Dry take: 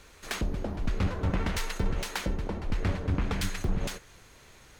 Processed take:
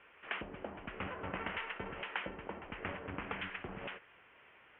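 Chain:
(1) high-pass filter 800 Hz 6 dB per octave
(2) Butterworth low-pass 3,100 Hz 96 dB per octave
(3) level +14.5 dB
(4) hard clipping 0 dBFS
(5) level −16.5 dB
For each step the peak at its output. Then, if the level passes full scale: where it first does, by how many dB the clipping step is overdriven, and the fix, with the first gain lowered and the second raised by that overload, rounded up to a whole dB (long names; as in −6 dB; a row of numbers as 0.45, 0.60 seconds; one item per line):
−17.0, −18.5, −4.0, −4.0, −20.5 dBFS
no step passes full scale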